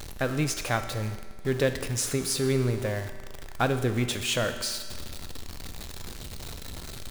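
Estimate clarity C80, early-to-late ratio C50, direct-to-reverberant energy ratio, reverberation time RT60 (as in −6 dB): 10.5 dB, 9.5 dB, 7.5 dB, 1.6 s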